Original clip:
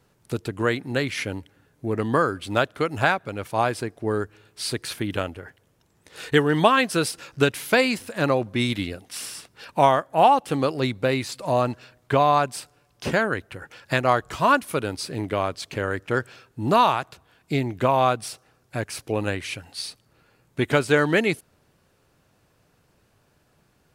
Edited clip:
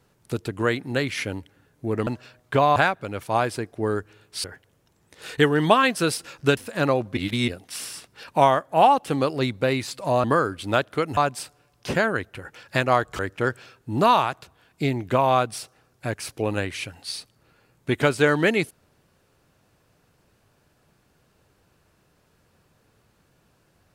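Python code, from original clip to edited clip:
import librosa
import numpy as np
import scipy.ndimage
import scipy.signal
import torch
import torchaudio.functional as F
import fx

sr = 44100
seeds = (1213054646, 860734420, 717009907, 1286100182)

y = fx.edit(x, sr, fx.swap(start_s=2.07, length_s=0.93, other_s=11.65, other_length_s=0.69),
    fx.cut(start_s=4.68, length_s=0.7),
    fx.cut(start_s=7.51, length_s=0.47),
    fx.reverse_span(start_s=8.58, length_s=0.31),
    fx.cut(start_s=14.36, length_s=1.53), tone=tone)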